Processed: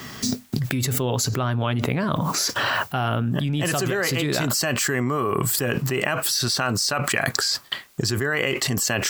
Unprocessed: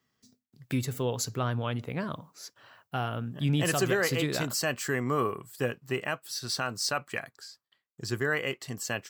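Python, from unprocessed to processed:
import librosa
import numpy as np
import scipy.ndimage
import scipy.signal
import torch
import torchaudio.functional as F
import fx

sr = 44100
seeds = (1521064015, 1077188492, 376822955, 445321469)

y = fx.notch(x, sr, hz=480.0, q=12.0)
y = fx.env_flatten(y, sr, amount_pct=100)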